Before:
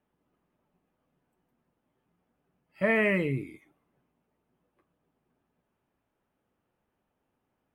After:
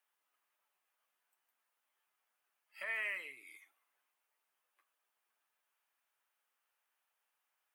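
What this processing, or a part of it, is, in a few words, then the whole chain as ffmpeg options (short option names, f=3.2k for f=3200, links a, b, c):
ASMR close-microphone chain: -af "lowshelf=f=150:g=6.5,acompressor=threshold=-32dB:ratio=6,highpass=f=500:p=1,highpass=1.3k,highshelf=f=6.7k:g=7,volume=1dB"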